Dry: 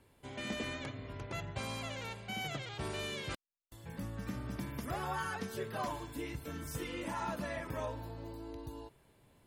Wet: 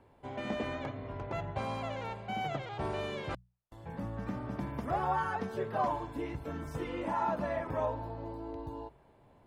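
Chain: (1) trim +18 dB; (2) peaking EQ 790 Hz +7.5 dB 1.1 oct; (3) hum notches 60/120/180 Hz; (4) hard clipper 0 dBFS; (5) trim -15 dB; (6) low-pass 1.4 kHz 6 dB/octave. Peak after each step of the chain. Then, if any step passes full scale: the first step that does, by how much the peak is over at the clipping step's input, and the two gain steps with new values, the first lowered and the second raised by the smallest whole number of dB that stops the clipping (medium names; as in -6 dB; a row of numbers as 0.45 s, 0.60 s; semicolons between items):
-10.5 dBFS, -4.5 dBFS, -4.5 dBFS, -4.5 dBFS, -19.5 dBFS, -21.0 dBFS; nothing clips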